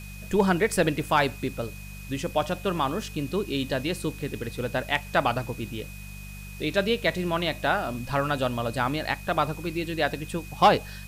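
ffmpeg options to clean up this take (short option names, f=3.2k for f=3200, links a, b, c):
-af "adeclick=t=4,bandreject=f=49.3:t=h:w=4,bandreject=f=98.6:t=h:w=4,bandreject=f=147.9:t=h:w=4,bandreject=f=197.2:t=h:w=4,bandreject=f=2.5k:w=30,afwtdn=0.0035"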